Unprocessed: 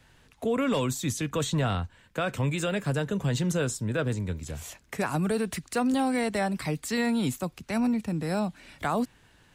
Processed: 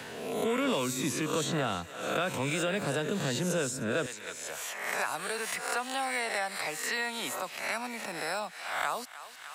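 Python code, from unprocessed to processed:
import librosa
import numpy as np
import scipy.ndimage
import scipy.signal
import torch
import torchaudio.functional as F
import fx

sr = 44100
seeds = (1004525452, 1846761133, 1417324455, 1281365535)

y = fx.spec_swells(x, sr, rise_s=0.6)
y = fx.highpass(y, sr, hz=fx.steps((0.0, 200.0), (4.06, 860.0)), slope=12)
y = fx.echo_thinned(y, sr, ms=305, feedback_pct=56, hz=990.0, wet_db=-17.0)
y = fx.band_squash(y, sr, depth_pct=70)
y = y * librosa.db_to_amplitude(-2.0)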